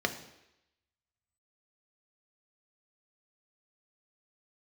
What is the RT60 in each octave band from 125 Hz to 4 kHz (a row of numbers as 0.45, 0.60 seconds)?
0.70, 0.80, 0.85, 0.85, 0.95, 0.90 seconds